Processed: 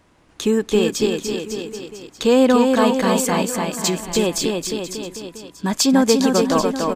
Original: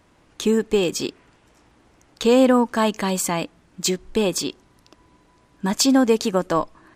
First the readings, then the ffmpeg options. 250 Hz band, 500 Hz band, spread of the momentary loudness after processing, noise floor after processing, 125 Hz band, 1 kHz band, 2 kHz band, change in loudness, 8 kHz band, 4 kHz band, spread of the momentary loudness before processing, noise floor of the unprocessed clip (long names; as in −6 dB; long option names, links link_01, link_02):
+3.0 dB, +3.0 dB, 15 LU, −54 dBFS, +3.0 dB, +3.0 dB, +3.0 dB, +2.0 dB, +3.0 dB, +3.0 dB, 11 LU, −58 dBFS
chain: -af "aecho=1:1:290|551|785.9|997.3|1188:0.631|0.398|0.251|0.158|0.1,volume=1dB"